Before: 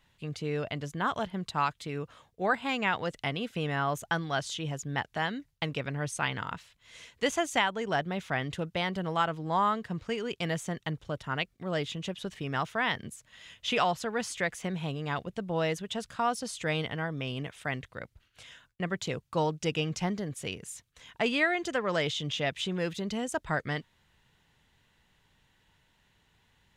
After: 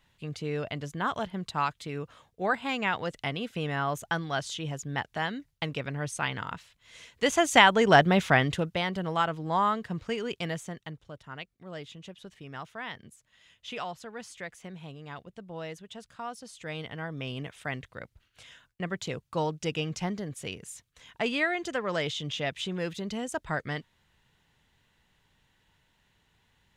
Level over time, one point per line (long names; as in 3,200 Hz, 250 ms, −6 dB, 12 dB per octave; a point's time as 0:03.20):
0:07.10 0 dB
0:07.72 +11 dB
0:08.25 +11 dB
0:08.82 +1 dB
0:10.30 +1 dB
0:11.08 −9.5 dB
0:16.51 −9.5 dB
0:17.24 −1 dB